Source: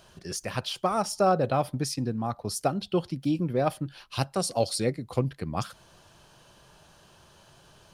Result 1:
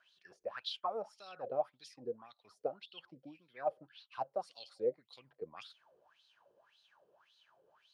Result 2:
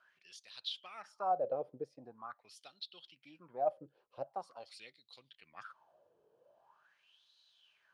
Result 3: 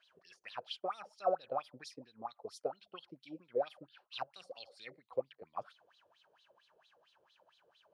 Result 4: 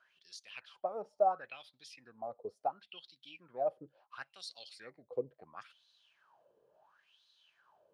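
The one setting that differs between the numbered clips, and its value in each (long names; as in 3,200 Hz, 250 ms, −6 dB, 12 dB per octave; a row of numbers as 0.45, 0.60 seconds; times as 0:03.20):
LFO wah, speed: 1.8, 0.44, 4.4, 0.72 Hertz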